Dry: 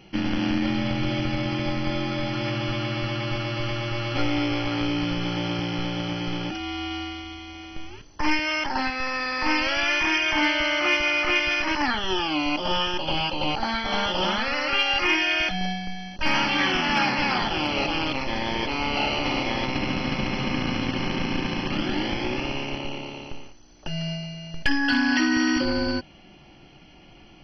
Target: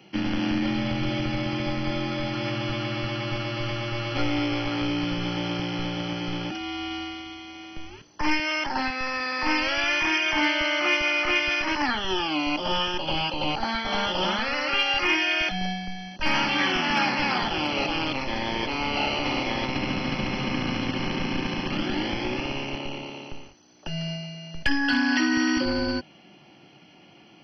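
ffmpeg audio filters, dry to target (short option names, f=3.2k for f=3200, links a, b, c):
-filter_complex "[0:a]acrossover=split=110|400|1700[a][b][c][d];[a]aeval=exprs='sgn(val(0))*max(abs(val(0))-0.00562,0)':c=same[e];[e][b][c][d]amix=inputs=4:normalize=0,volume=-1dB"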